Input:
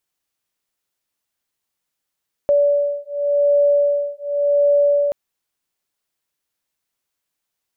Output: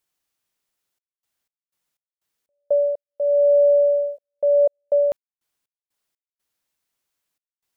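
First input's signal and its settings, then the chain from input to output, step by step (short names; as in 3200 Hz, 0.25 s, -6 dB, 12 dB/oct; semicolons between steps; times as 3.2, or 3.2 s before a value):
beating tones 575 Hz, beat 0.89 Hz, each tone -17 dBFS 2.63 s
step gate "xxxx.x.x.x.x." 61 bpm -60 dB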